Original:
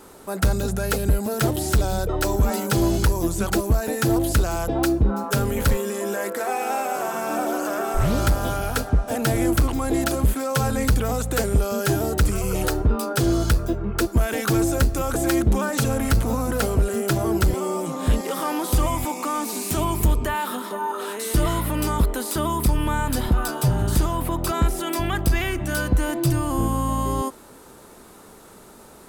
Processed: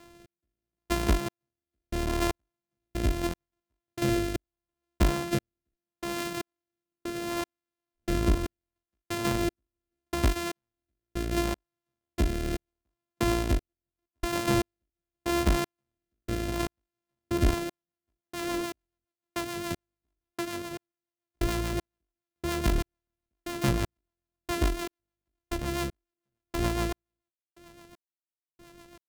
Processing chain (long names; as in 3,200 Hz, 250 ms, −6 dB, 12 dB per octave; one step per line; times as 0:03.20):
samples sorted by size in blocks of 128 samples
rotating-speaker cabinet horn 0.75 Hz, later 7 Hz, at 0:17.09
gate pattern "xx.....x" 117 BPM −60 dB
level −4 dB